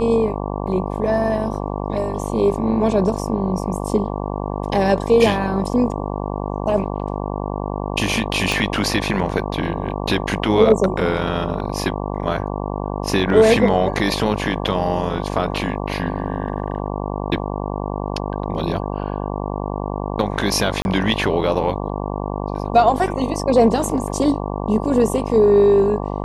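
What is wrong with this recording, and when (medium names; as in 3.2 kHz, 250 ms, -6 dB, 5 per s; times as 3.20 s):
buzz 50 Hz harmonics 23 -25 dBFS
8.52 s: pop
20.82–20.85 s: dropout 31 ms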